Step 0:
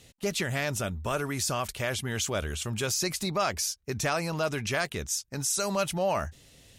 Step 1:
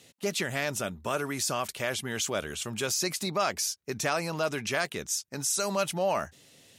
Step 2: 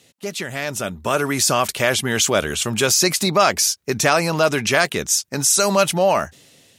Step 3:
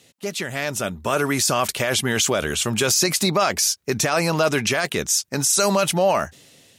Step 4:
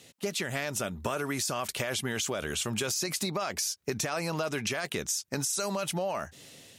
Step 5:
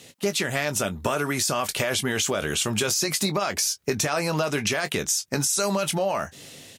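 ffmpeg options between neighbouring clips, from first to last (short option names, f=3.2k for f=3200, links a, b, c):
-af "highpass=170"
-af "dynaudnorm=f=280:g=7:m=11.5dB,volume=2dB"
-af "alimiter=limit=-9.5dB:level=0:latency=1:release=15"
-af "acompressor=threshold=-28dB:ratio=12"
-filter_complex "[0:a]asplit=2[a][b];[b]adelay=20,volume=-10.5dB[c];[a][c]amix=inputs=2:normalize=0,volume=6.5dB"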